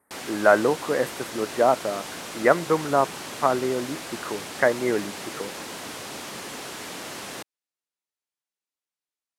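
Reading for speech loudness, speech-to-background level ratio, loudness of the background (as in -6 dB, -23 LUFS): -24.0 LUFS, 11.0 dB, -35.0 LUFS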